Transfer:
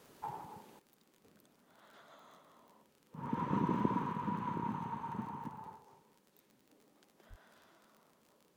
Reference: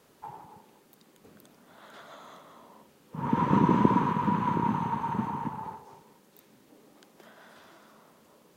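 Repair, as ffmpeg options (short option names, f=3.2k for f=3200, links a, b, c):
-filter_complex "[0:a]adeclick=t=4,asplit=3[a][b][c];[a]afade=t=out:st=7.29:d=0.02[d];[b]highpass=f=140:w=0.5412,highpass=f=140:w=1.3066,afade=t=in:st=7.29:d=0.02,afade=t=out:st=7.41:d=0.02[e];[c]afade=t=in:st=7.41:d=0.02[f];[d][e][f]amix=inputs=3:normalize=0,asetnsamples=n=441:p=0,asendcmd='0.79 volume volume 11dB',volume=0dB"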